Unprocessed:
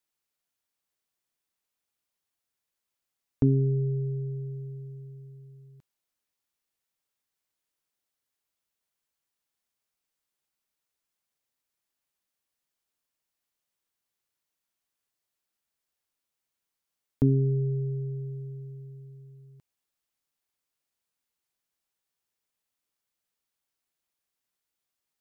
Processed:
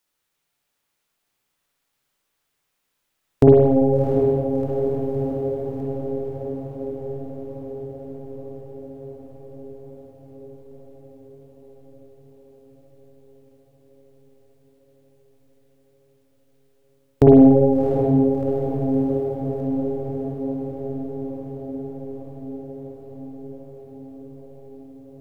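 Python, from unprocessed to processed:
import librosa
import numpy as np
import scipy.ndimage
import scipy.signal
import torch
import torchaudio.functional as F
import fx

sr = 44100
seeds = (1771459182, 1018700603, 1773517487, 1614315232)

p1 = fx.tracing_dist(x, sr, depth_ms=0.14)
p2 = fx.wow_flutter(p1, sr, seeds[0], rate_hz=2.1, depth_cents=28.0)
p3 = fx.formant_shift(p2, sr, semitones=6)
p4 = p3 + fx.echo_diffused(p3, sr, ms=696, feedback_pct=73, wet_db=-7.0, dry=0)
p5 = fx.rev_spring(p4, sr, rt60_s=1.2, pass_ms=(49, 56), chirp_ms=25, drr_db=-2.0)
y = F.gain(torch.from_numpy(p5), 8.5).numpy()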